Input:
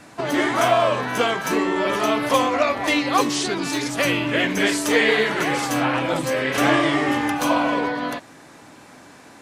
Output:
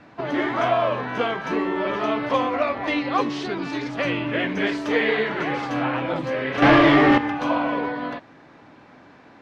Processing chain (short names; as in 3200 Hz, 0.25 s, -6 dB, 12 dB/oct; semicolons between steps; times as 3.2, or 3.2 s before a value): 6.62–7.18 sample leveller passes 3; air absorption 250 m; gain -2 dB